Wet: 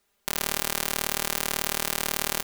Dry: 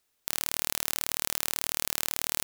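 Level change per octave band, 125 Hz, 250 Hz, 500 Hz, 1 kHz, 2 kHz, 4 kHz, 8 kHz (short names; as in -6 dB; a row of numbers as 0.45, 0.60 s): +7.0, +8.5, +9.0, +8.0, +6.0, +3.5, +1.5 dB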